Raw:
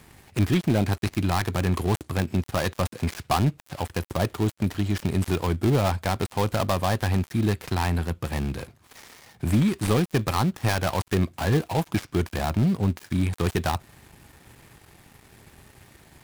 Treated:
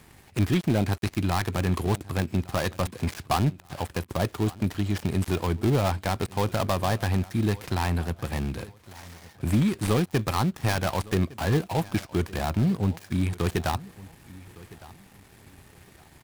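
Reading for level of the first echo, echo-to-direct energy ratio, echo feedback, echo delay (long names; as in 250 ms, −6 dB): −20.5 dB, −20.0 dB, 27%, 1,160 ms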